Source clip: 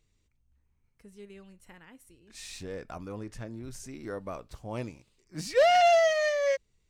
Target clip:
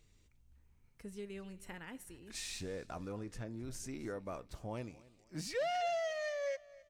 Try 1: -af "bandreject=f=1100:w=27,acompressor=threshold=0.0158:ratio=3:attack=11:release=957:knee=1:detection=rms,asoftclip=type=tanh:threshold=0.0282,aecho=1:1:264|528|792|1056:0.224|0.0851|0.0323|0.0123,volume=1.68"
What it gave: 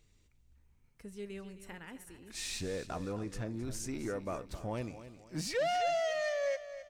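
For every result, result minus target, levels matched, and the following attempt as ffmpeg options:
echo-to-direct +8 dB; compression: peak gain reduction -5.5 dB
-af "bandreject=f=1100:w=27,acompressor=threshold=0.0158:ratio=3:attack=11:release=957:knee=1:detection=rms,asoftclip=type=tanh:threshold=0.0282,aecho=1:1:264|528|792:0.0891|0.0339|0.0129,volume=1.68"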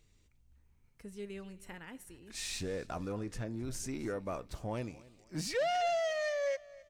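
compression: peak gain reduction -5.5 dB
-af "bandreject=f=1100:w=27,acompressor=threshold=0.00631:ratio=3:attack=11:release=957:knee=1:detection=rms,asoftclip=type=tanh:threshold=0.0282,aecho=1:1:264|528|792:0.0891|0.0339|0.0129,volume=1.68"

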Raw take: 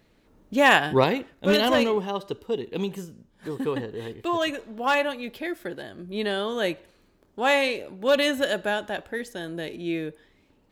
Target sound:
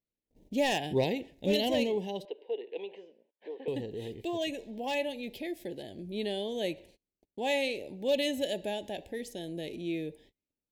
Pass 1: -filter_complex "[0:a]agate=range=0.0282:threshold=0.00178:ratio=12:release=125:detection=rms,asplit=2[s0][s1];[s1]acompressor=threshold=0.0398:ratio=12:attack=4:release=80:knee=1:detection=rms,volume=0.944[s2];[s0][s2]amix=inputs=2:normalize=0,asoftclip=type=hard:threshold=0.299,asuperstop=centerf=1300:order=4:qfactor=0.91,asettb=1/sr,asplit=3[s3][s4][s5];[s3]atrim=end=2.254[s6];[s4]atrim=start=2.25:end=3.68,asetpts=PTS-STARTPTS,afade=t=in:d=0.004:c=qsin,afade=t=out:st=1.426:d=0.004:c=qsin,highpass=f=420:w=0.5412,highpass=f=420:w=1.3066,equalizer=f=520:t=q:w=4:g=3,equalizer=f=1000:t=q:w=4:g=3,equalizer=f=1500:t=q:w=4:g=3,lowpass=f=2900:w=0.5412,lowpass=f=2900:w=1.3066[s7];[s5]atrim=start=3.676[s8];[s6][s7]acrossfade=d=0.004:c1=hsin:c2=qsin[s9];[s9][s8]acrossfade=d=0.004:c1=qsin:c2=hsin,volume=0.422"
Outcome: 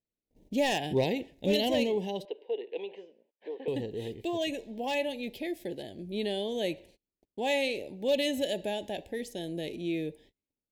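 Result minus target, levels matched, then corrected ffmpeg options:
compression: peak gain reduction -7.5 dB
-filter_complex "[0:a]agate=range=0.0282:threshold=0.00178:ratio=12:release=125:detection=rms,asplit=2[s0][s1];[s1]acompressor=threshold=0.0158:ratio=12:attack=4:release=80:knee=1:detection=rms,volume=0.944[s2];[s0][s2]amix=inputs=2:normalize=0,asoftclip=type=hard:threshold=0.299,asuperstop=centerf=1300:order=4:qfactor=0.91,asettb=1/sr,asplit=3[s3][s4][s5];[s3]atrim=end=2.254[s6];[s4]atrim=start=2.25:end=3.68,asetpts=PTS-STARTPTS,afade=t=in:d=0.004:c=qsin,afade=t=out:st=1.426:d=0.004:c=qsin,highpass=f=420:w=0.5412,highpass=f=420:w=1.3066,equalizer=f=520:t=q:w=4:g=3,equalizer=f=1000:t=q:w=4:g=3,equalizer=f=1500:t=q:w=4:g=3,lowpass=f=2900:w=0.5412,lowpass=f=2900:w=1.3066[s7];[s5]atrim=start=3.676[s8];[s6][s7]acrossfade=d=0.004:c1=hsin:c2=qsin[s9];[s9][s8]acrossfade=d=0.004:c1=qsin:c2=hsin,volume=0.422"

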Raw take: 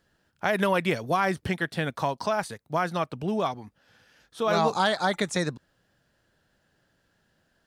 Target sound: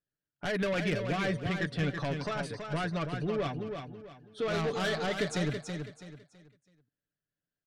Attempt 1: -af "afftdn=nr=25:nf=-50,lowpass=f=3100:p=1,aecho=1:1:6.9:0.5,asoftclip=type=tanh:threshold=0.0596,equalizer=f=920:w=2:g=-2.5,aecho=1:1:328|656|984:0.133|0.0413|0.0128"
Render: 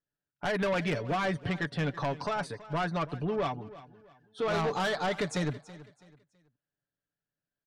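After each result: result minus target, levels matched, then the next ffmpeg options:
echo-to-direct -11 dB; 1 kHz band +3.5 dB
-af "afftdn=nr=25:nf=-50,lowpass=f=3100:p=1,aecho=1:1:6.9:0.5,asoftclip=type=tanh:threshold=0.0596,equalizer=f=920:w=2:g=-2.5,aecho=1:1:328|656|984|1312:0.473|0.147|0.0455|0.0141"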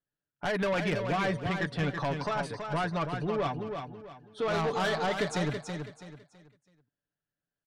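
1 kHz band +4.0 dB
-af "afftdn=nr=25:nf=-50,lowpass=f=3100:p=1,aecho=1:1:6.9:0.5,asoftclip=type=tanh:threshold=0.0596,equalizer=f=920:w=2:g=-12,aecho=1:1:328|656|984|1312:0.473|0.147|0.0455|0.0141"

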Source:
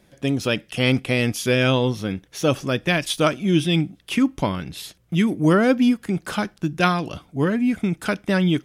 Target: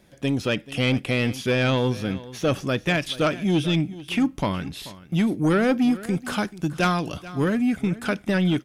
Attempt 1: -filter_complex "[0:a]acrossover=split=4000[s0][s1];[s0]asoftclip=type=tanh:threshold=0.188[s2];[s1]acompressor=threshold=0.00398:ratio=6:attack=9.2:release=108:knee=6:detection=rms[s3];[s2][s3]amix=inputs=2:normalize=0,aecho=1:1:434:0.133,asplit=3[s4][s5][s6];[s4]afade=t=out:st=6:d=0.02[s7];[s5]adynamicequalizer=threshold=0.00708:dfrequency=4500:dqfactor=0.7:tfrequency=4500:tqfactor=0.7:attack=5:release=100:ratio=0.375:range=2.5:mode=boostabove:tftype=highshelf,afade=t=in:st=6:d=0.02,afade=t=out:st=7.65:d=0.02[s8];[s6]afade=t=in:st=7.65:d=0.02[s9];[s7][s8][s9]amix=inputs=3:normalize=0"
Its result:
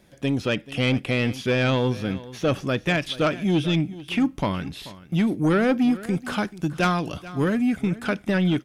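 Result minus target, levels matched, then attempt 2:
compression: peak gain reduction +6 dB
-filter_complex "[0:a]acrossover=split=4000[s0][s1];[s0]asoftclip=type=tanh:threshold=0.188[s2];[s1]acompressor=threshold=0.00891:ratio=6:attack=9.2:release=108:knee=6:detection=rms[s3];[s2][s3]amix=inputs=2:normalize=0,aecho=1:1:434:0.133,asplit=3[s4][s5][s6];[s4]afade=t=out:st=6:d=0.02[s7];[s5]adynamicequalizer=threshold=0.00708:dfrequency=4500:dqfactor=0.7:tfrequency=4500:tqfactor=0.7:attack=5:release=100:ratio=0.375:range=2.5:mode=boostabove:tftype=highshelf,afade=t=in:st=6:d=0.02,afade=t=out:st=7.65:d=0.02[s8];[s6]afade=t=in:st=7.65:d=0.02[s9];[s7][s8][s9]amix=inputs=3:normalize=0"

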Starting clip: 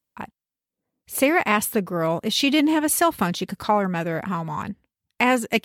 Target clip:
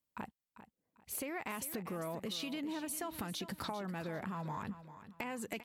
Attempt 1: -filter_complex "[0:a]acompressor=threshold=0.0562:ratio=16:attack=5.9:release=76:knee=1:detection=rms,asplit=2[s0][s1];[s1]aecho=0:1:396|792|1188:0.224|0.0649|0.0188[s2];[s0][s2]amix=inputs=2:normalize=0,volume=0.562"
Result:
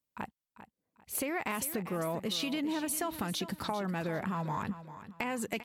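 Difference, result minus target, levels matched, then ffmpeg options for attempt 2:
compression: peak gain reduction -6.5 dB
-filter_complex "[0:a]acompressor=threshold=0.0251:ratio=16:attack=5.9:release=76:knee=1:detection=rms,asplit=2[s0][s1];[s1]aecho=0:1:396|792|1188:0.224|0.0649|0.0188[s2];[s0][s2]amix=inputs=2:normalize=0,volume=0.562"

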